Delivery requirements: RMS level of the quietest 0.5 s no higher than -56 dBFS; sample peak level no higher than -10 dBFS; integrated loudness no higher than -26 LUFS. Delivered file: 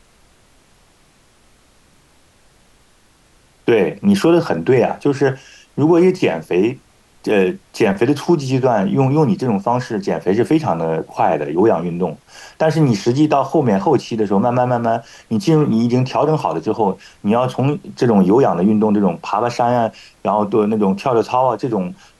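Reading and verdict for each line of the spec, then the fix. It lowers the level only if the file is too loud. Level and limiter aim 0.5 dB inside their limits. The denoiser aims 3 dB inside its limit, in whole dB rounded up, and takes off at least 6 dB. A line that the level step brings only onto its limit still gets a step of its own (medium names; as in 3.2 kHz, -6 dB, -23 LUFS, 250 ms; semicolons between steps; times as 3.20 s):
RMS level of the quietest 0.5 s -53 dBFS: fail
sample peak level -4.5 dBFS: fail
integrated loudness -16.5 LUFS: fail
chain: trim -10 dB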